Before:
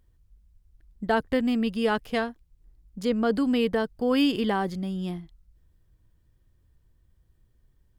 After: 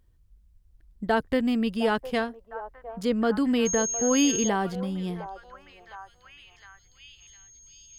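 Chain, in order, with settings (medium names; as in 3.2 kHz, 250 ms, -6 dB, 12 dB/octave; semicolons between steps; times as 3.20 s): 3.65–4.47 s: whistle 6.5 kHz -27 dBFS; repeats whose band climbs or falls 709 ms, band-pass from 690 Hz, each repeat 0.7 oct, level -9 dB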